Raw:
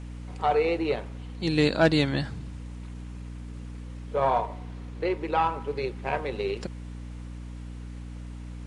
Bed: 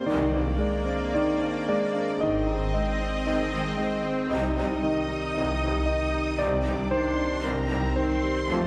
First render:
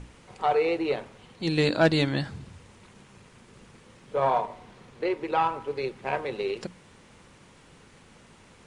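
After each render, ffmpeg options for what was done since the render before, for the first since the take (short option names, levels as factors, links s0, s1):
-af "bandreject=f=60:t=h:w=6,bandreject=f=120:t=h:w=6,bandreject=f=180:t=h:w=6,bandreject=f=240:t=h:w=6,bandreject=f=300:t=h:w=6"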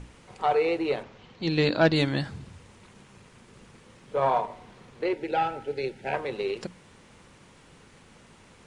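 -filter_complex "[0:a]asettb=1/sr,asplit=3[s0][s1][s2];[s0]atrim=end=1.034[s3];[s1]atrim=start=1.03:end=1.96,asetpts=PTS-STARTPTS,afade=t=in:d=0.004:c=qsin,afade=t=out:st=0.926:d=0.004:c=qsin,lowpass=f=6100:w=0.5412,lowpass=f=6100:w=1.3066[s4];[s2]atrim=start=1.956[s5];[s3][s4]acrossfade=d=0.004:c1=hsin:c2=qsin[s6];[s6][s5]acrossfade=d=0.004:c1=qsin:c2=hsin,asettb=1/sr,asplit=3[s7][s8][s9];[s7]atrim=end=5.134[s10];[s8]atrim=start=5.13:end=6.14,asetpts=PTS-STARTPTS,afade=t=in:d=0.004:c=qsin,afade=t=out:st=1.006:d=0.004:c=qsin,asuperstop=centerf=1100:order=20:qfactor=3[s11];[s9]atrim=start=6.136[s12];[s10][s11]acrossfade=d=0.004:c1=hsin:c2=qsin[s13];[s13][s12]acrossfade=d=0.004:c1=qsin:c2=hsin"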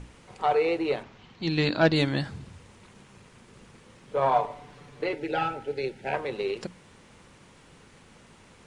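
-filter_complex "[0:a]asettb=1/sr,asplit=3[s0][s1][s2];[s0]atrim=end=0.974[s3];[s1]atrim=start=0.97:end=1.83,asetpts=PTS-STARTPTS,afade=t=in:d=0.004:c=qsin,afade=t=out:st=0.856:d=0.004:c=qsin,equalizer=f=510:w=2.6:g=-6.5[s4];[s2]atrim=start=1.826[s5];[s3][s4]acrossfade=d=0.004:c1=hsin:c2=qsin[s6];[s6][s5]acrossfade=d=0.004:c1=qsin:c2=hsin,asettb=1/sr,asplit=3[s7][s8][s9];[s7]atrim=end=4.314[s10];[s8]atrim=start=4.31:end=5.54,asetpts=PTS-STARTPTS,afade=t=in:d=0.004:c=qsin,afade=t=out:st=1.226:d=0.004:c=qsin,aecho=1:1:6.9:0.64,atrim=end_sample=54243[s11];[s9]atrim=start=5.536[s12];[s10][s11]acrossfade=d=0.004:c1=hsin:c2=qsin[s13];[s13][s12]acrossfade=d=0.004:c1=qsin:c2=hsin"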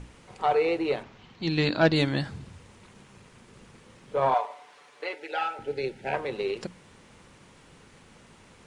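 -filter_complex "[0:a]asettb=1/sr,asplit=3[s0][s1][s2];[s0]atrim=end=4.344[s3];[s1]atrim=start=4.34:end=5.59,asetpts=PTS-STARTPTS,afade=t=in:d=0.004:c=qsin,afade=t=out:st=1.246:d=0.004:c=qsin,highpass=660[s4];[s2]atrim=start=5.586[s5];[s3][s4]acrossfade=d=0.004:c1=hsin:c2=qsin[s6];[s6][s5]acrossfade=d=0.004:c1=qsin:c2=hsin"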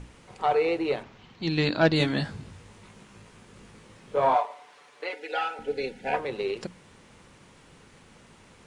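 -filter_complex "[0:a]asettb=1/sr,asplit=3[s0][s1][s2];[s0]atrim=end=1.984[s3];[s1]atrim=start=1.98:end=4.43,asetpts=PTS-STARTPTS,afade=t=in:d=0.004:c=qsin,afade=t=out:st=2.446:d=0.004:c=qsin,asplit=2[s4][s5];[s5]adelay=19,volume=0.631[s6];[s4][s6]amix=inputs=2:normalize=0,atrim=end_sample=108045[s7];[s2]atrim=start=4.426[s8];[s3][s7]acrossfade=d=0.004:c1=hsin:c2=qsin[s9];[s9][s8]acrossfade=d=0.004:c1=qsin:c2=hsin,asettb=1/sr,asplit=3[s10][s11][s12];[s10]atrim=end=5.094[s13];[s11]atrim=start=5.09:end=6.19,asetpts=PTS-STARTPTS,afade=t=in:d=0.004:c=qsin,afade=t=out:st=1.096:d=0.004:c=qsin,aecho=1:1:4.1:0.65,atrim=end_sample=48510[s14];[s12]atrim=start=6.186[s15];[s13][s14]acrossfade=d=0.004:c1=hsin:c2=qsin[s16];[s16][s15]acrossfade=d=0.004:c1=qsin:c2=hsin"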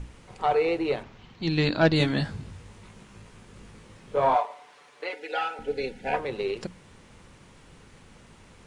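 -af "lowshelf=f=82:g=9.5"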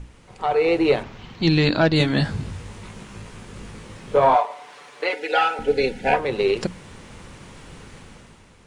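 -af "alimiter=limit=0.15:level=0:latency=1:release=383,dynaudnorm=f=110:g=11:m=3.16"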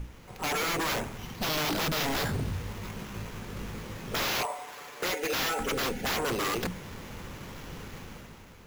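-af "acrusher=samples=5:mix=1:aa=0.000001,aeval=exprs='0.0596*(abs(mod(val(0)/0.0596+3,4)-2)-1)':c=same"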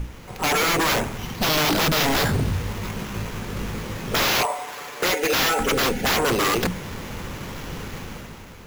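-af "volume=2.82"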